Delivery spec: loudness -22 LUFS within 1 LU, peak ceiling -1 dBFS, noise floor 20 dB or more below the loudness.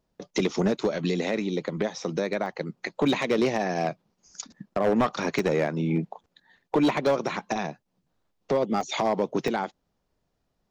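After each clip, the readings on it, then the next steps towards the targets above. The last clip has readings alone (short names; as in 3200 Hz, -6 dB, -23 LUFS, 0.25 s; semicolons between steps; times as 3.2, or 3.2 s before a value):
clipped 1.1%; flat tops at -16.5 dBFS; dropouts 4; longest dropout 1.1 ms; loudness -27.0 LUFS; peak -16.5 dBFS; loudness target -22.0 LUFS
-> clip repair -16.5 dBFS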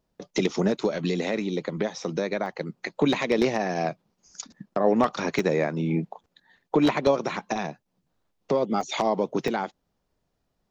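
clipped 0.0%; dropouts 4; longest dropout 1.1 ms
-> interpolate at 2.46/5.39/8.81/9.48, 1.1 ms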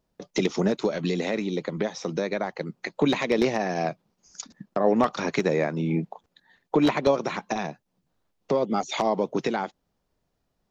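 dropouts 0; loudness -26.5 LUFS; peak -7.5 dBFS; loudness target -22.0 LUFS
-> gain +4.5 dB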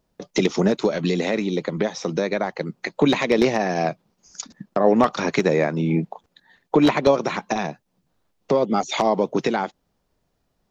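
loudness -22.0 LUFS; peak -3.0 dBFS; noise floor -72 dBFS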